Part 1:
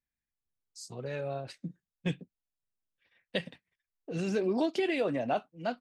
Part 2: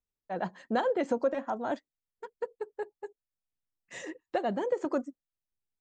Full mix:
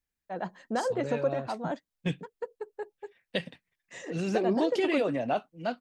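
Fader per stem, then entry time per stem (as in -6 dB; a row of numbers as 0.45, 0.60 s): +1.5, -1.5 dB; 0.00, 0.00 s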